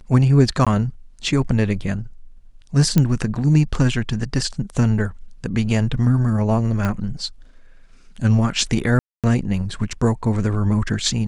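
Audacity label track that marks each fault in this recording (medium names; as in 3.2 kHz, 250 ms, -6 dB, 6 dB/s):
0.650000	0.670000	dropout 16 ms
2.980000	2.980000	pop -4 dBFS
6.850000	6.850000	pop -10 dBFS
8.990000	9.240000	dropout 247 ms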